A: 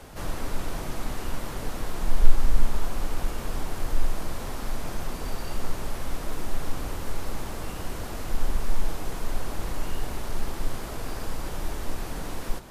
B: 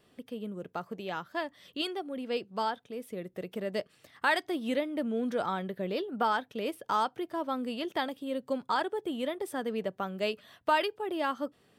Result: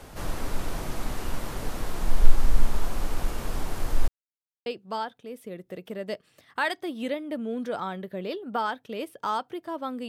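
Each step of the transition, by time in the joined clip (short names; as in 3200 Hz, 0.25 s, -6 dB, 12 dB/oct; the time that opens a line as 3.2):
A
4.08–4.66 mute
4.66 switch to B from 2.32 s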